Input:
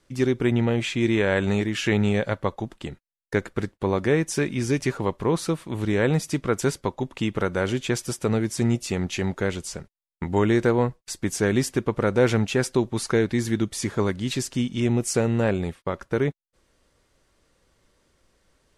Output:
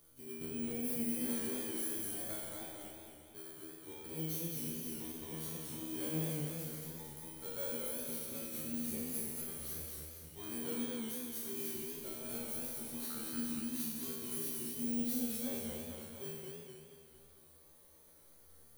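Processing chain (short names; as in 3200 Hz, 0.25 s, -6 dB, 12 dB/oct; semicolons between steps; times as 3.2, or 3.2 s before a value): FFT order left unsorted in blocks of 16 samples; upward compressor, threshold -40 dBFS; auto swell 0.19 s; compressor, threshold -24 dBFS, peak gain reduction 9 dB; high shelf 6200 Hz +10.5 dB; notch 5200 Hz, Q 5.6; resonator 79 Hz, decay 1.3 s, harmonics all, mix 100%; warbling echo 0.227 s, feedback 52%, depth 119 cents, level -3 dB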